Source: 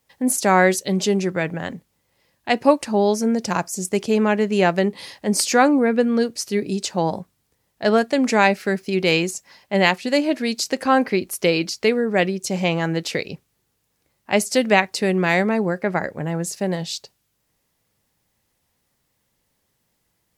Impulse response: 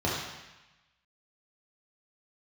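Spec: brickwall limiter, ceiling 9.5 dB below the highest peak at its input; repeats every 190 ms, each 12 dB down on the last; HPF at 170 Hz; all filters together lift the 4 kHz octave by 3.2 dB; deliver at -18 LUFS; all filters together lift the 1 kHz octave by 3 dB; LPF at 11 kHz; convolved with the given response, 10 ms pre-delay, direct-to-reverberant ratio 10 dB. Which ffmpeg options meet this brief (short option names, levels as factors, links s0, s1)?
-filter_complex "[0:a]highpass=170,lowpass=11000,equalizer=f=1000:t=o:g=4,equalizer=f=4000:t=o:g=4,alimiter=limit=0.447:level=0:latency=1,aecho=1:1:190|380|570:0.251|0.0628|0.0157,asplit=2[s0][s1];[1:a]atrim=start_sample=2205,adelay=10[s2];[s1][s2]afir=irnorm=-1:irlink=0,volume=0.0841[s3];[s0][s3]amix=inputs=2:normalize=0,volume=1.33"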